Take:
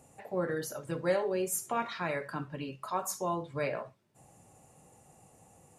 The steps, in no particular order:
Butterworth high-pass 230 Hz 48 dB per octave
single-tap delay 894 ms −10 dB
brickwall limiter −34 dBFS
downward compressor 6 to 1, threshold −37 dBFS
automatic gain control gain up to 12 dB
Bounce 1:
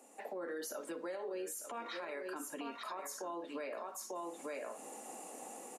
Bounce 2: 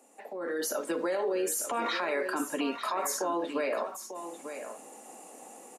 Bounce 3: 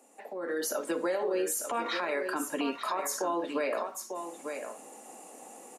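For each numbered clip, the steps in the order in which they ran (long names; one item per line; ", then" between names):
automatic gain control, then single-tap delay, then downward compressor, then Butterworth high-pass, then brickwall limiter
Butterworth high-pass, then brickwall limiter, then downward compressor, then automatic gain control, then single-tap delay
Butterworth high-pass, then downward compressor, then single-tap delay, then brickwall limiter, then automatic gain control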